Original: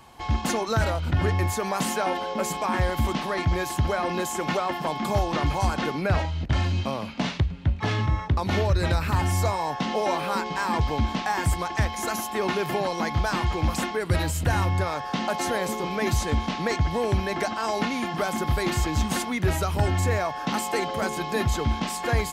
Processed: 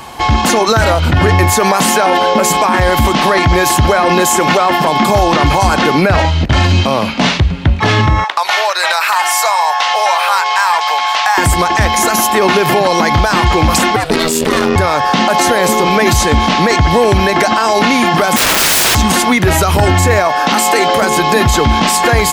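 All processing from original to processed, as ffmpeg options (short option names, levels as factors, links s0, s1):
-filter_complex "[0:a]asettb=1/sr,asplit=3[s0][s1][s2];[s0]atrim=end=8.244[s3];[s1]atrim=start=8.24:end=11.38,asetpts=PTS-STARTPTS,afade=t=in:d=0.004:c=qsin,afade=t=out:st=3.136:d=0.004:c=qsin,highpass=f=740:w=0.5412,highpass=f=740:w=1.3066,acompressor=threshold=0.0316:ratio=2.5:attack=3.2:release=140:knee=1:detection=peak,asoftclip=type=hard:threshold=0.0668[s4];[s2]atrim=start=11.376[s5];[s3][s4]acrossfade=d=0.004:c1=hsin:c2=qsin[s6];[s6][s5]acrossfade=d=0.004:c1=qsin:c2=hsin,asettb=1/sr,asplit=3[s7][s8][s9];[s7]atrim=end=13.964[s10];[s8]atrim=start=13.96:end=14.76,asetpts=PTS-STARTPTS,afade=t=in:d=0.004:c=qsin,afade=t=out:st=0.796:d=0.004:c=qsin,equalizer=f=4300:w=0.8:g=6,aeval=exprs='(tanh(8.91*val(0)+0.65)-tanh(0.65))/8.91':c=same,aeval=exprs='val(0)*sin(2*PI*320*n/s)':c=same[s11];[s9]atrim=start=14.756[s12];[s10][s11]acrossfade=d=0.004:c1=hsin:c2=qsin[s13];[s13][s12]acrossfade=d=0.004:c1=qsin:c2=hsin,asettb=1/sr,asplit=3[s14][s15][s16];[s14]atrim=end=18.364[s17];[s15]atrim=start=18.36:end=18.95,asetpts=PTS-STARTPTS,afade=t=in:d=0.004:c=qsin,afade=t=out:st=0.586:d=0.004:c=qsin,highpass=f=120:w=0.5412,highpass=f=120:w=1.3066,equalizer=f=300:t=o:w=0.57:g=11,aeval=exprs='(mod(22.4*val(0)+1,2)-1)/22.4':c=same[s18];[s16]atrim=start=18.946[s19];[s17][s18]acrossfade=d=0.004:c1=hsin:c2=qsin[s20];[s20][s19]acrossfade=d=0.004:c1=qsin:c2=hsin,asettb=1/sr,asplit=3[s21][s22][s23];[s21]atrim=end=20.284[s24];[s22]atrim=start=20.28:end=21.01,asetpts=PTS-STARTPTS,afade=t=in:d=0.004:c=qsin,afade=t=out:st=0.726:d=0.004:c=qsin,equalizer=f=100:w=0.83:g=-9,asplit=2[s25][s26];[s26]adelay=18,volume=0.251[s27];[s25][s27]amix=inputs=2:normalize=0,atrim=end_sample=32193[s28];[s23]atrim=start=21.006[s29];[s24][s28]acrossfade=d=0.004:c1=hsin:c2=qsin[s30];[s30][s29]acrossfade=d=0.004:c1=qsin:c2=hsin,lowshelf=f=220:g=-6,alimiter=level_in=12.6:limit=0.891:release=50:level=0:latency=1,volume=0.891"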